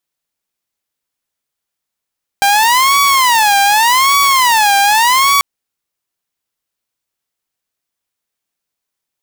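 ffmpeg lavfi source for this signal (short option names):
-f lavfi -i "aevalsrc='0.531*(2*mod((963*t-167/(2*PI*0.85)*sin(2*PI*0.85*t)),1)-1)':d=2.99:s=44100"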